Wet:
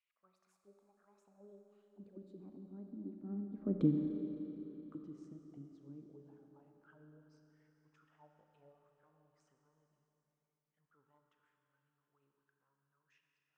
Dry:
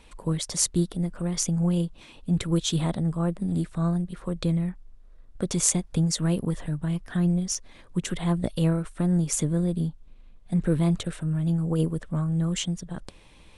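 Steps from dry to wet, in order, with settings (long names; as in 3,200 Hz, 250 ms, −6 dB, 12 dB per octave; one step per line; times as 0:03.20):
source passing by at 0:03.78, 49 m/s, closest 3.9 metres
envelope filter 280–2,300 Hz, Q 4.5, down, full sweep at −48 dBFS
four-comb reverb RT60 3.8 s, combs from 29 ms, DRR 3.5 dB
level +8.5 dB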